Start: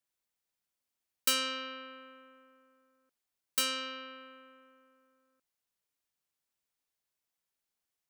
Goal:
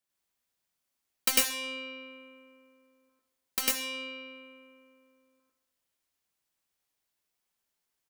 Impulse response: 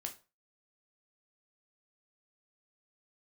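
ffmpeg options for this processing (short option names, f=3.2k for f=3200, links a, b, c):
-filter_complex "[0:a]asplit=2[a][b];[b]adelay=132,lowpass=f=1.7k:p=1,volume=-12dB,asplit=2[c][d];[d]adelay=132,lowpass=f=1.7k:p=1,volume=0.52,asplit=2[e][f];[f]adelay=132,lowpass=f=1.7k:p=1,volume=0.52,asplit=2[g][h];[h]adelay=132,lowpass=f=1.7k:p=1,volume=0.52,asplit=2[i][j];[j]adelay=132,lowpass=f=1.7k:p=1,volume=0.52[k];[a][c][e][g][i][k]amix=inputs=6:normalize=0,asplit=2[l][m];[1:a]atrim=start_sample=2205,adelay=99[n];[m][n]afir=irnorm=-1:irlink=0,volume=4.5dB[o];[l][o]amix=inputs=2:normalize=0,aeval=exprs='0.251*(cos(1*acos(clip(val(0)/0.251,-1,1)))-cos(1*PI/2))+0.0631*(cos(7*acos(clip(val(0)/0.251,-1,1)))-cos(7*PI/2))':c=same,volume=2.5dB"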